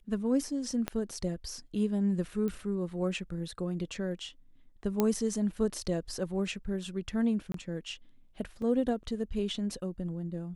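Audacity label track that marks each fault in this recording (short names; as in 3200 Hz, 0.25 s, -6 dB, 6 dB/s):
0.880000	0.880000	pop -17 dBFS
2.480000	2.480000	pop -24 dBFS
5.000000	5.000000	pop -13 dBFS
7.520000	7.540000	gap 23 ms
8.620000	8.620000	gap 2.5 ms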